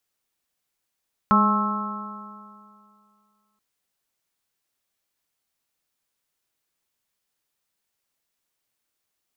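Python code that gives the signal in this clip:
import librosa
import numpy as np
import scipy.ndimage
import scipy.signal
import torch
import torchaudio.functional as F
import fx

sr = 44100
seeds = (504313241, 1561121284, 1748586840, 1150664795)

y = fx.additive_stiff(sr, length_s=2.28, hz=206.0, level_db=-17.5, upper_db=(-14.0, -14, -7.5, -0.5, 0.5), decay_s=2.29, stiffness=0.0035)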